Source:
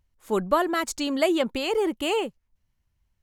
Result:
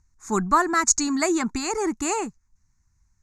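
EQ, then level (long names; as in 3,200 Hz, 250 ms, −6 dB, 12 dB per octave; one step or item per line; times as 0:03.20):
low-pass with resonance 6,600 Hz, resonance Q 5.1
phaser with its sweep stopped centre 1,300 Hz, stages 4
+6.5 dB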